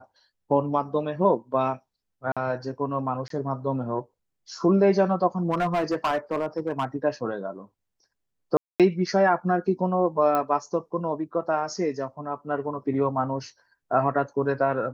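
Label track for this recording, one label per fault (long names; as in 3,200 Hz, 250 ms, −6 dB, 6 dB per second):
2.320000	2.370000	drop-out 46 ms
3.280000	3.300000	drop-out 23 ms
5.500000	6.850000	clipping −20 dBFS
8.570000	8.800000	drop-out 227 ms
10.350000	10.350000	click −13 dBFS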